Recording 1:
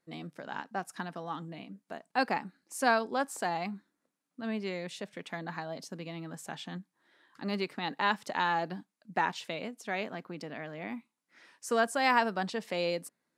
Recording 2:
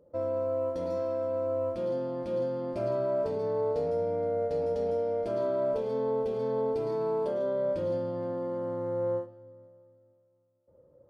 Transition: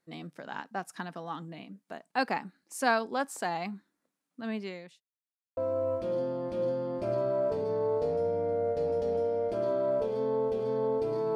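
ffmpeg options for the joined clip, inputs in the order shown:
-filter_complex "[0:a]apad=whole_dur=11.35,atrim=end=11.35,asplit=2[a][b];[a]atrim=end=5.01,asetpts=PTS-STARTPTS,afade=t=out:st=4.55:d=0.46[c];[b]atrim=start=5.01:end=5.57,asetpts=PTS-STARTPTS,volume=0[d];[1:a]atrim=start=1.31:end=7.09,asetpts=PTS-STARTPTS,afade=t=in:d=0.004:c=hsin[e];[c][d][e]concat=n=3:v=0:a=1"

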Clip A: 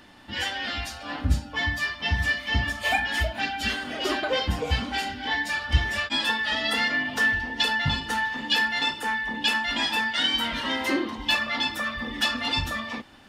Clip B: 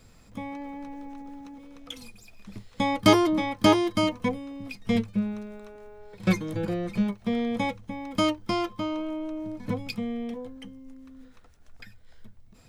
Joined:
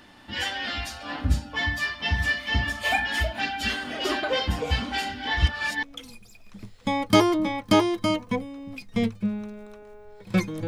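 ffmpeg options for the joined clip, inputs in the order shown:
-filter_complex "[0:a]apad=whole_dur=10.67,atrim=end=10.67,asplit=2[a][b];[a]atrim=end=5.372[c];[b]atrim=start=5.368:end=5.832,asetpts=PTS-STARTPTS,areverse[d];[1:a]atrim=start=1.758:end=6.6[e];[c][d]acrossfade=d=0.004:c1=hsin:c2=hsin[f];[f][e]acrossfade=d=0.004:c1=hsin:c2=hsin"

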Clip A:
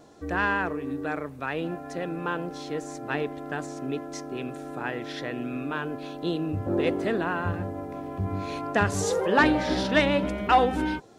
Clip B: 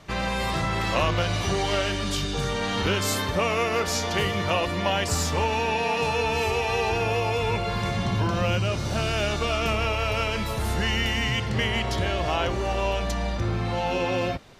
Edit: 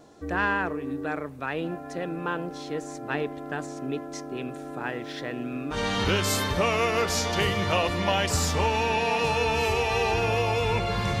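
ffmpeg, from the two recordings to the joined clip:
-filter_complex "[0:a]asettb=1/sr,asplit=3[a][b][c];[a]atrim=end=4.814[d];[b]atrim=start=4.81:end=5.78,asetpts=PTS-STARTPTS,afade=t=in:d=0.004:c=qsin,afade=t=out:st=0.966:d=0.004:c=qsin,aeval=exprs='sgn(val(0))*max(abs(val(0))-0.00133,0)':c=same[e];[c]atrim=start=5.776[f];[d][e]acrossfade=d=0.004:c1=hsin:c2=qsin[g];[g][f]acrossfade=d=0.004:c1=qsin:c2=hsin,apad=whole_dur=11.2,atrim=end=11.2,atrim=end=5.78,asetpts=PTS-STARTPTS[h];[1:a]atrim=start=2.48:end=7.98,asetpts=PTS-STARTPTS[i];[h][i]acrossfade=d=0.08:c1=tri:c2=tri"

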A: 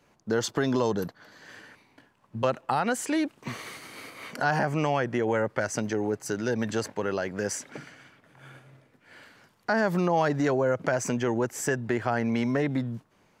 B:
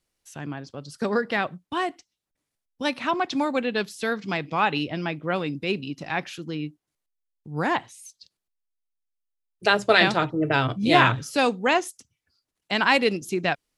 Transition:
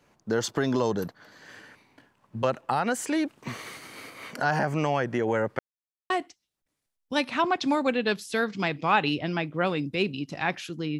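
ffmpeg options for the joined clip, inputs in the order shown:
-filter_complex "[0:a]apad=whole_dur=10.99,atrim=end=10.99,asplit=2[a][b];[a]atrim=end=5.59,asetpts=PTS-STARTPTS,afade=t=out:st=5.586:d=0.004:c=hsin[c];[b]atrim=start=5.59:end=6.1,asetpts=PTS-STARTPTS,volume=0[d];[1:a]atrim=start=1.79:end=6.68,asetpts=PTS-STARTPTS,afade=t=in:d=0.004:c=hsin[e];[c][d][e]concat=n=3:v=0:a=1"

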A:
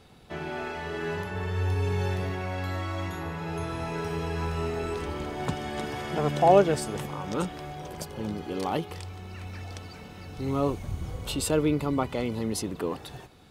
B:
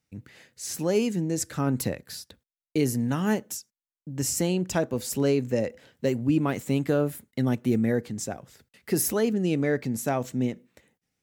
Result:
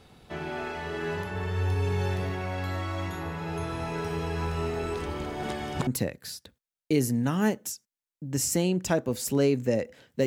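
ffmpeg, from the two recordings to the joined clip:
-filter_complex "[0:a]apad=whole_dur=10.26,atrim=end=10.26,asplit=2[a][b];[a]atrim=end=5.432[c];[b]atrim=start=5.428:end=5.872,asetpts=PTS-STARTPTS,areverse[d];[1:a]atrim=start=1.718:end=6.11[e];[c][d]acrossfade=d=0.004:c1=hsin:c2=hsin[f];[f][e]acrossfade=d=0.004:c1=hsin:c2=hsin"

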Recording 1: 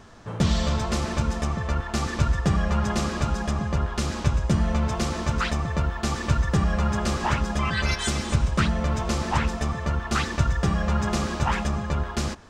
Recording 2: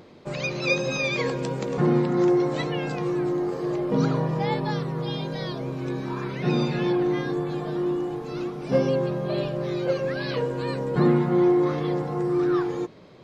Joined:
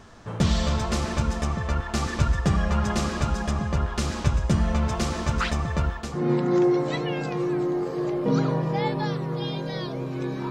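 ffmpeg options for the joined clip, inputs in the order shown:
-filter_complex "[0:a]apad=whole_dur=10.5,atrim=end=10.5,atrim=end=6.34,asetpts=PTS-STARTPTS[a];[1:a]atrim=start=1.56:end=6.16,asetpts=PTS-STARTPTS[b];[a][b]acrossfade=d=0.44:c1=qua:c2=qua"

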